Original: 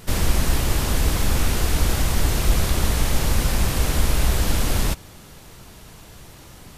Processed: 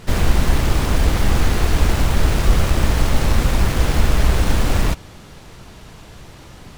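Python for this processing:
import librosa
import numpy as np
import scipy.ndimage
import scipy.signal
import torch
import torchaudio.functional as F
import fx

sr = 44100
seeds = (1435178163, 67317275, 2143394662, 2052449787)

y = fx.self_delay(x, sr, depth_ms=0.9)
y = fx.high_shelf(y, sr, hz=8600.0, db=-12.0)
y = y * 10.0 ** (4.5 / 20.0)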